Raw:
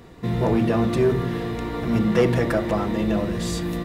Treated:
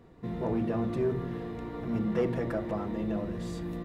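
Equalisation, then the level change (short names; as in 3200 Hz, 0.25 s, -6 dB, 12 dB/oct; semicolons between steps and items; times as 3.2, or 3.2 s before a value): high shelf 2000 Hz -10.5 dB; notches 60/120 Hz; -9.0 dB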